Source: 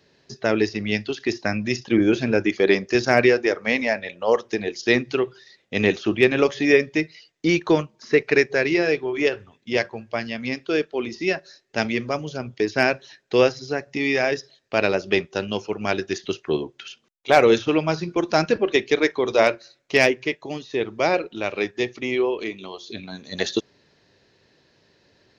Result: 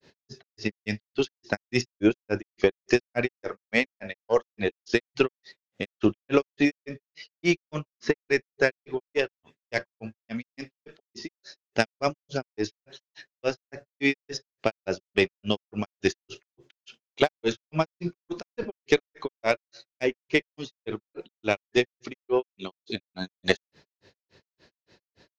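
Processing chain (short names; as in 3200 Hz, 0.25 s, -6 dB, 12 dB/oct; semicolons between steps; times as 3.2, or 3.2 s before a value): compressor 6:1, threshold -19 dBFS, peak gain reduction 9.5 dB; added harmonics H 3 -24 dB, 4 -25 dB, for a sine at -6.5 dBFS; grains 0.146 s, grains 3.5/s, pitch spread up and down by 0 st; gain +6 dB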